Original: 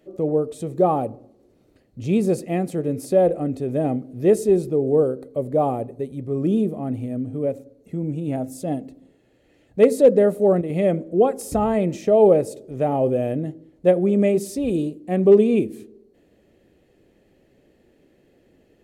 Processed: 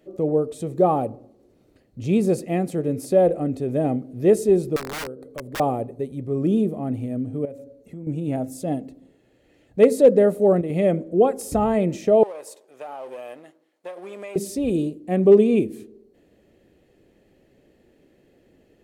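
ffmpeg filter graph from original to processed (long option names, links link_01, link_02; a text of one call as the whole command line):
ffmpeg -i in.wav -filter_complex "[0:a]asettb=1/sr,asplit=3[link_01][link_02][link_03];[link_01]atrim=end=4.764[link_04];[link_02]atrim=start=4.76:end=5.6,asetpts=PTS-STARTPTS,afade=type=in:duration=0.004:curve=qsin,afade=type=out:start_time=0.836:duration=0.004:curve=qsin,aeval=exprs='(mod(5.62*val(0)+1,2)-1)/5.62':channel_layout=same,acompressor=threshold=-39dB:ratio=2:attack=3.2:release=140:knee=1:detection=peak[link_05];[link_03]atrim=start=5.596[link_06];[link_04][link_05]acrossfade=duration=0.004:curve1=hsin:curve2=qsin[link_07];[link_07][link_06]acrossfade=duration=0.004:curve1=qsin:curve2=hsin,asettb=1/sr,asplit=3[link_08][link_09][link_10];[link_08]atrim=end=7.454[link_11];[link_09]atrim=start=7.45:end=8.07,asetpts=PTS-STARTPTS,afade=type=in:duration=0.004:curve=qsin,afade=type=out:start_time=0.616:duration=0.004:curve=qsin,bandreject=frequency=92.93:width_type=h:width=4,bandreject=frequency=185.86:width_type=h:width=4,bandreject=frequency=278.79:width_type=h:width=4,bandreject=frequency=371.72:width_type=h:width=4,bandreject=frequency=464.65:width_type=h:width=4,bandreject=frequency=557.58:width_type=h:width=4,bandreject=frequency=650.51:width_type=h:width=4,acompressor=threshold=-36dB:ratio=3:attack=3.2:release=140:knee=1:detection=peak[link_12];[link_10]atrim=start=8.066[link_13];[link_11][link_12]acrossfade=duration=0.004:curve1=hsin:curve2=qsin[link_14];[link_14][link_13]acrossfade=duration=0.004:curve1=qsin:curve2=hsin,asettb=1/sr,asplit=3[link_15][link_16][link_17];[link_15]atrim=end=12.234[link_18];[link_16]atrim=start=12.23:end=14.36,asetpts=PTS-STARTPTS,afade=type=in:duration=0.004:curve=qsin,afade=type=out:start_time=2.126:duration=0.004:curve=qsin,aeval=exprs='if(lt(val(0),0),0.708*val(0),val(0))':channel_layout=same,highpass=930,acompressor=threshold=-31dB:ratio=6:attack=3.2:release=140:knee=1:detection=peak[link_19];[link_17]atrim=start=14.356[link_20];[link_18][link_19]acrossfade=duration=0.004:curve1=hsin:curve2=qsin[link_21];[link_21][link_20]acrossfade=duration=0.004:curve1=qsin:curve2=hsin" out.wav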